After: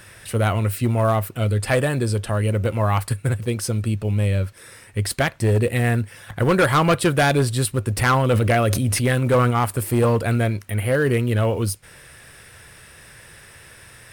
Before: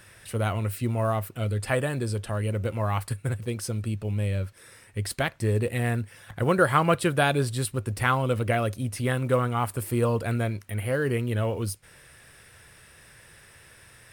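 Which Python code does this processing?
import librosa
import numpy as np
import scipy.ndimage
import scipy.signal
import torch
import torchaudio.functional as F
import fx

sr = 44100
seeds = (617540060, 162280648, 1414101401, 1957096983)

y = np.clip(x, -10.0 ** (-19.0 / 20.0), 10.0 ** (-19.0 / 20.0))
y = fx.sustainer(y, sr, db_per_s=27.0, at=(7.97, 9.5), fade=0.02)
y = y * librosa.db_to_amplitude(7.0)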